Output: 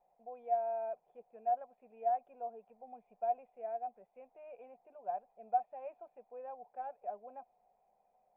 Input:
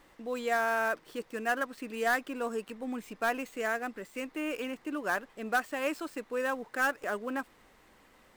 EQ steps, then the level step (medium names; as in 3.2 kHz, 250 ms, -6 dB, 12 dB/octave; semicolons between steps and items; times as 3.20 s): cascade formant filter a; static phaser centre 300 Hz, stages 6; +5.5 dB